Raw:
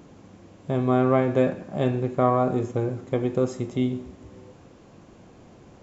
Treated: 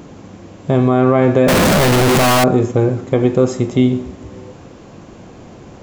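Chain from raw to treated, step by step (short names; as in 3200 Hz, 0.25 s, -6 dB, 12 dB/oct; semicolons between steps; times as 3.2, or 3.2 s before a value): 1.48–2.44 infinite clipping; maximiser +13 dB; gain -1 dB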